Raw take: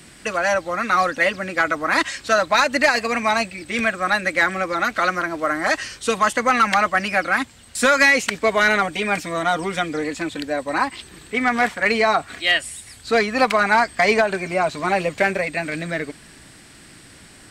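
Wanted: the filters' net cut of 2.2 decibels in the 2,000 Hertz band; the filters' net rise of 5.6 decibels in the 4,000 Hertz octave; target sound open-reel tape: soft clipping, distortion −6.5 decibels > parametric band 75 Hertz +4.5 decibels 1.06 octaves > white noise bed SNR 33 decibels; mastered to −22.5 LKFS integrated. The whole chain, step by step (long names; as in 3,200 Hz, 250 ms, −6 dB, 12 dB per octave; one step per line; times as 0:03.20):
parametric band 2,000 Hz −4.5 dB
parametric band 4,000 Hz +8 dB
soft clipping −22.5 dBFS
parametric band 75 Hz +4.5 dB 1.06 octaves
white noise bed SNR 33 dB
level +4 dB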